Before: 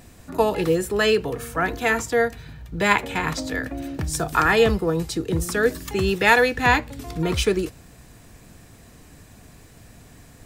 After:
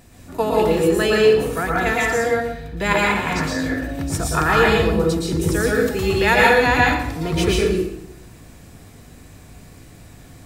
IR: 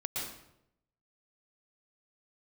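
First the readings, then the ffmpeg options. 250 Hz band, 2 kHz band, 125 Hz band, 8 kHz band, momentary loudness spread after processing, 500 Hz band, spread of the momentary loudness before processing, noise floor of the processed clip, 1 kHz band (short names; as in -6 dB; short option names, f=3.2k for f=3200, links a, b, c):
+4.5 dB, +3.0 dB, +4.5 dB, +2.5 dB, 10 LU, +4.0 dB, 11 LU, -44 dBFS, +3.0 dB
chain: -filter_complex "[1:a]atrim=start_sample=2205[a];[0:a][a]afir=irnorm=-1:irlink=0"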